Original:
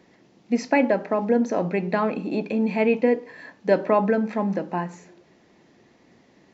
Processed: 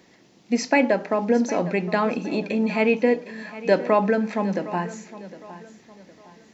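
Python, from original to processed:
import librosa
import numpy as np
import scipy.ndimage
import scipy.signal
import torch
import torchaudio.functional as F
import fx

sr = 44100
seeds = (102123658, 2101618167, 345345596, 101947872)

p1 = fx.high_shelf(x, sr, hz=2900.0, db=9.5)
y = p1 + fx.echo_feedback(p1, sr, ms=760, feedback_pct=36, wet_db=-16.0, dry=0)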